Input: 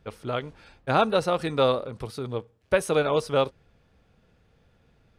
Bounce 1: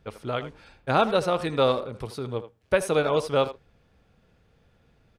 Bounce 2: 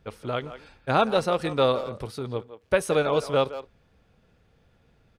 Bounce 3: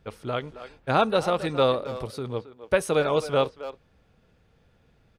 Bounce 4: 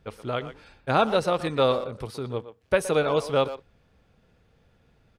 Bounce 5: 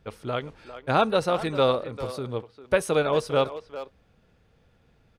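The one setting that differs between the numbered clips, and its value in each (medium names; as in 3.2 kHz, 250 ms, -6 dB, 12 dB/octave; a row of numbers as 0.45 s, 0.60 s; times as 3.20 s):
speakerphone echo, time: 80 ms, 170 ms, 270 ms, 120 ms, 400 ms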